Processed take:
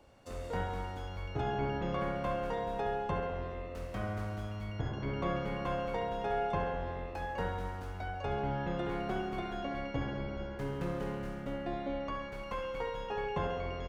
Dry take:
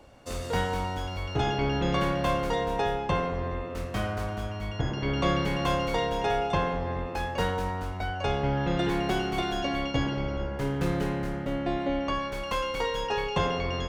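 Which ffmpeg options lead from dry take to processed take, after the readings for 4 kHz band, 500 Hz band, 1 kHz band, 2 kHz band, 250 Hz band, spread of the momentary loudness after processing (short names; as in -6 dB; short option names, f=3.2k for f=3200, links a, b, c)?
-14.0 dB, -6.5 dB, -7.0 dB, -9.0 dB, -8.5 dB, 6 LU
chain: -filter_complex "[0:a]aecho=1:1:67|134|201|268|335|402|469:0.447|0.246|0.135|0.0743|0.0409|0.0225|0.0124,acrossover=split=2200[a][b];[b]acompressor=threshold=-49dB:ratio=10[c];[a][c]amix=inputs=2:normalize=0,volume=-8dB"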